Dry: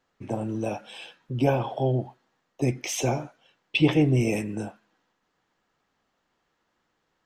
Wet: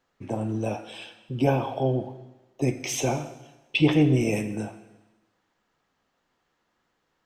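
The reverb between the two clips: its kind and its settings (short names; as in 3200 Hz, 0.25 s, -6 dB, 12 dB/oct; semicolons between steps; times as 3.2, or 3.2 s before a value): plate-style reverb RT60 1.1 s, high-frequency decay 1×, DRR 10 dB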